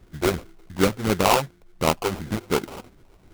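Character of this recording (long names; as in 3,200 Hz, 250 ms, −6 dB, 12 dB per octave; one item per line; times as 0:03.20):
phaser sweep stages 8, 2.8 Hz, lowest notch 190–2,200 Hz
aliases and images of a low sample rate 1,800 Hz, jitter 20%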